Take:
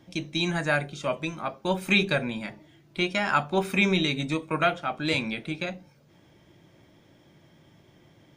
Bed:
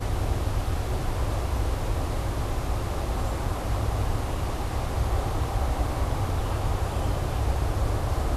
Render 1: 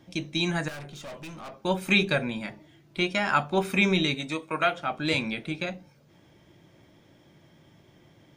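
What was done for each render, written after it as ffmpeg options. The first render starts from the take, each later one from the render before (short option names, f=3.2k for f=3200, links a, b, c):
-filter_complex "[0:a]asettb=1/sr,asplit=3[a][b][c];[a]atrim=end=0.684[d];[b]atrim=start=0.68:end=1.59,asetpts=PTS-STARTPTS,afade=t=in:d=0.004:c=qsin,afade=t=out:st=0.906:d=0.004:c=qsin,aeval=exprs='(tanh(79.4*val(0)+0.2)-tanh(0.2))/79.4':c=same[e];[c]atrim=start=1.586[f];[d][e]acrossfade=d=0.004:c1=hsin:c2=qsin[g];[g][f]acrossfade=d=0.004:c1=qsin:c2=hsin,asettb=1/sr,asplit=3[h][i][j];[h]atrim=end=4.144[k];[i]atrim=start=4.14:end=4.77,asetpts=PTS-STARTPTS,afade=t=in:d=0.004:c=qsin,afade=t=out:st=0.626:d=0.004:c=qsin,lowshelf=f=250:g=-11[l];[j]atrim=start=4.766[m];[k][l]acrossfade=d=0.004:c1=hsin:c2=qsin[n];[n][m]acrossfade=d=0.004:c1=qsin:c2=hsin"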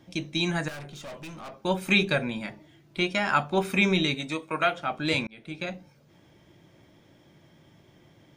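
-filter_complex "[0:a]asplit=2[a][b];[a]atrim=end=5.27,asetpts=PTS-STARTPTS,afade=t=out:st=5.266:d=0.004:c=hsin[c];[b]atrim=start=5.27,asetpts=PTS-STARTPTS,afade=t=in:d=0.46[d];[c][d]concat=n=2:v=0:a=1"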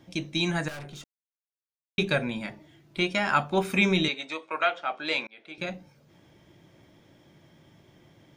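-filter_complex "[0:a]asettb=1/sr,asplit=3[a][b][c];[a]atrim=end=4.084[d];[b]atrim=start=4.08:end=5.58,asetpts=PTS-STARTPTS,afade=t=in:d=0.004:c=qsin,afade=t=out:st=1.496:d=0.004:c=qsin,highpass=480,lowpass=5k[e];[c]atrim=start=5.576[f];[d][e]acrossfade=d=0.004:c1=hsin:c2=qsin[g];[g][f]acrossfade=d=0.004:c1=qsin:c2=hsin,asplit=3[h][i][j];[h]atrim=end=1.04,asetpts=PTS-STARTPTS,afade=t=out:st=1.036:d=0.004:c=hsin[k];[i]atrim=start=1.04:end=1.98,asetpts=PTS-STARTPTS,volume=0[l];[j]atrim=start=1.98,asetpts=PTS-STARTPTS,afade=t=in:d=0.004:c=hsin[m];[k][l][m]concat=n=3:v=0:a=1"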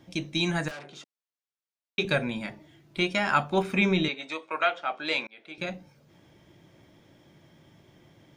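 -filter_complex "[0:a]asettb=1/sr,asplit=3[a][b][c];[a]atrim=end=0.714[d];[b]atrim=start=0.71:end=2.05,asetpts=PTS-STARTPTS,afade=t=in:d=0.004:c=qsin,afade=t=out:st=1.336:d=0.004:c=qsin,highpass=270,lowpass=6.6k[e];[c]atrim=start=2.046[f];[d][e]acrossfade=d=0.004:c1=hsin:c2=qsin[g];[g][f]acrossfade=d=0.004:c1=qsin:c2=hsin,asettb=1/sr,asplit=3[h][i][j];[h]atrim=end=3.624[k];[i]atrim=start=3.62:end=4.23,asetpts=PTS-STARTPTS,afade=t=in:d=0.004:c=qsin,afade=t=out:st=0.606:d=0.004:c=qsin,aemphasis=mode=reproduction:type=50kf[l];[j]atrim=start=4.226[m];[k][l]acrossfade=d=0.004:c1=hsin:c2=qsin[n];[n][m]acrossfade=d=0.004:c1=qsin:c2=hsin"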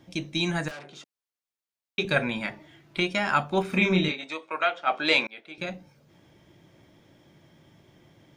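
-filter_complex "[0:a]asettb=1/sr,asplit=3[a][b][c];[a]atrim=end=2.164[d];[b]atrim=start=2.16:end=3,asetpts=PTS-STARTPTS,afade=t=in:d=0.004:c=qsin,afade=t=out:st=0.836:d=0.004:c=qsin,equalizer=f=1.6k:w=0.44:g=7[e];[c]atrim=start=2.996[f];[d][e]acrossfade=d=0.004:c1=hsin:c2=qsin[g];[g][f]acrossfade=d=0.004:c1=qsin:c2=hsin,asettb=1/sr,asplit=3[h][i][j];[h]atrim=end=3.694[k];[i]atrim=start=3.69:end=4.24,asetpts=PTS-STARTPTS,afade=t=in:d=0.004:c=qsin,afade=t=out:st=0.546:d=0.004:c=qsin,asplit=2[l][m];[m]adelay=33,volume=-4dB[n];[l][n]amix=inputs=2:normalize=0,atrim=end_sample=24255[o];[j]atrim=start=4.236[p];[k][o]acrossfade=d=0.004:c1=hsin:c2=qsin[q];[q][p]acrossfade=d=0.004:c1=qsin:c2=hsin,asplit=3[r][s][t];[r]afade=t=out:st=4.86:d=0.02[u];[s]acontrast=73,afade=t=in:st=4.86:d=0.02,afade=t=out:st=5.39:d=0.02[v];[t]afade=t=in:st=5.39:d=0.02[w];[u][v][w]amix=inputs=3:normalize=0"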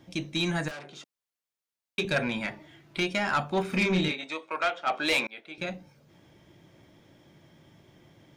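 -af "asoftclip=type=tanh:threshold=-19dB"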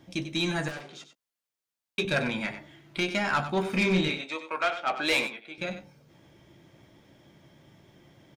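-filter_complex "[0:a]asplit=2[a][b];[b]adelay=15,volume=-12.5dB[c];[a][c]amix=inputs=2:normalize=0,asplit=2[d][e];[e]aecho=0:1:95:0.282[f];[d][f]amix=inputs=2:normalize=0"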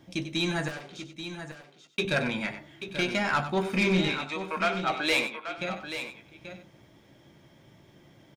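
-af "aecho=1:1:834:0.316"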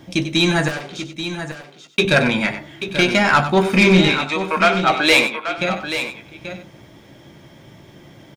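-af "volume=12dB"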